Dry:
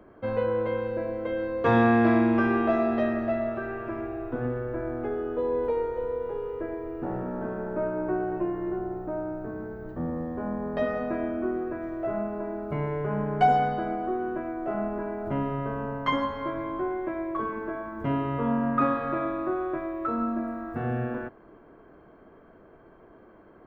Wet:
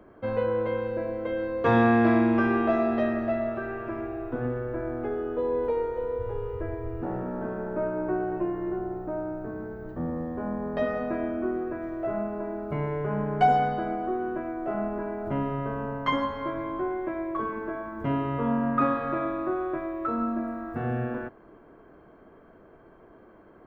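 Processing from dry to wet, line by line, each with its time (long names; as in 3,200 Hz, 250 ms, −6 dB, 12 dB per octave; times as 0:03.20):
0:06.18–0:07.01: low shelf with overshoot 140 Hz +9.5 dB, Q 3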